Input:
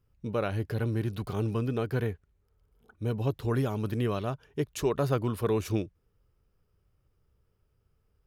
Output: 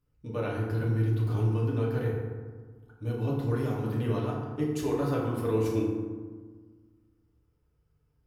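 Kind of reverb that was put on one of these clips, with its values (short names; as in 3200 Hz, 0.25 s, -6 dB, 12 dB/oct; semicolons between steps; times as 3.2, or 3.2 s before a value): FDN reverb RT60 1.5 s, low-frequency decay 1.3×, high-frequency decay 0.45×, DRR -4.5 dB; gain -7.5 dB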